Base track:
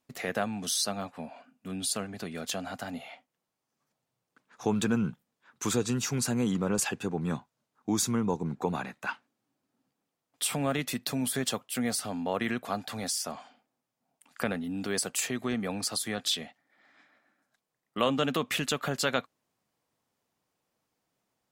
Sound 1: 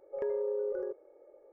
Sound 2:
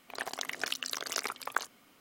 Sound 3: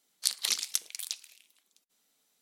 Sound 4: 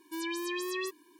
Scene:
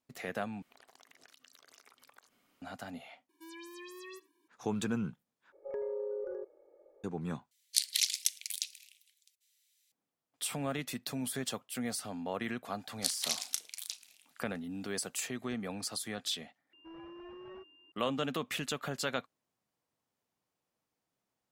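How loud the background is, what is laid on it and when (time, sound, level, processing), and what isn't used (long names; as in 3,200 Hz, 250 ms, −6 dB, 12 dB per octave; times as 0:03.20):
base track −6.5 dB
0:00.62: overwrite with 2 −10.5 dB + downward compressor, threshold −46 dBFS
0:03.29: overwrite with 4 −13.5 dB + single-tap delay 83 ms −21 dB
0:05.52: overwrite with 1 −4.5 dB
0:07.51: overwrite with 3 −0.5 dB + Butterworth high-pass 1,900 Hz
0:12.79: mix in 3 −5 dB + double-tracking delay 35 ms −11.5 dB
0:16.73: overwrite with 4 −12.5 dB + switching amplifier with a slow clock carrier 2,800 Hz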